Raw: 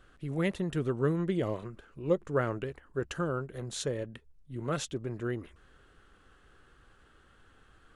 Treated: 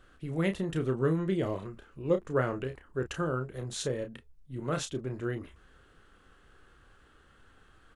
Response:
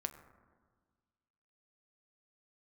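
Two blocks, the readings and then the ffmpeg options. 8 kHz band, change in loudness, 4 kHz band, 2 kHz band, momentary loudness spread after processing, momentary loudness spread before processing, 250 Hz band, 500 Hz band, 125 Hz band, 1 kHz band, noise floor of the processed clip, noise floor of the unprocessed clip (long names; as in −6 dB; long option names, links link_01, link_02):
+0.5 dB, +0.5 dB, +0.5 dB, +0.5 dB, 12 LU, 11 LU, +0.5 dB, +1.0 dB, +1.0 dB, +0.5 dB, −61 dBFS, −62 dBFS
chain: -filter_complex "[0:a]asplit=2[link_01][link_02];[link_02]adelay=31,volume=-7.5dB[link_03];[link_01][link_03]amix=inputs=2:normalize=0"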